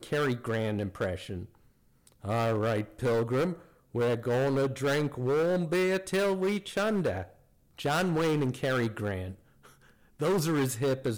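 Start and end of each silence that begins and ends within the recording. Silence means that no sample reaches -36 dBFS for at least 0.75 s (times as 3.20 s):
9.32–10.20 s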